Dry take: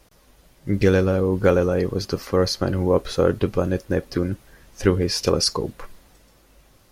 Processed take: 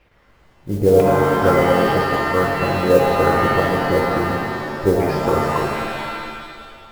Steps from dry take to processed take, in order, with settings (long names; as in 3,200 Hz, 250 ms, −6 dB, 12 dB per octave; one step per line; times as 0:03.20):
auto-filter low-pass saw down 1 Hz 510–2,600 Hz
noise that follows the level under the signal 24 dB
reverb with rising layers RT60 1.9 s, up +7 semitones, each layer −2 dB, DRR 0.5 dB
level −3 dB